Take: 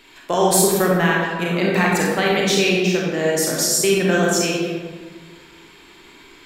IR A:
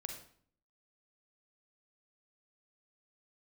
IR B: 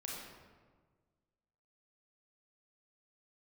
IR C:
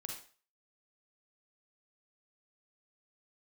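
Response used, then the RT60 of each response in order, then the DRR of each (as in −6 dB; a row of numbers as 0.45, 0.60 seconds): B; 0.55, 1.5, 0.40 seconds; 3.5, −3.5, 0.5 decibels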